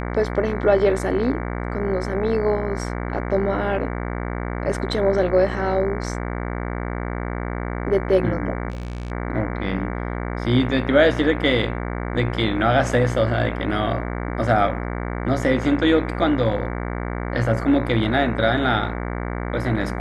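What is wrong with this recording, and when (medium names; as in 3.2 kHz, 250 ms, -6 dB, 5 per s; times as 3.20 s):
buzz 60 Hz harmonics 38 -27 dBFS
8.70–9.12 s: clipped -26 dBFS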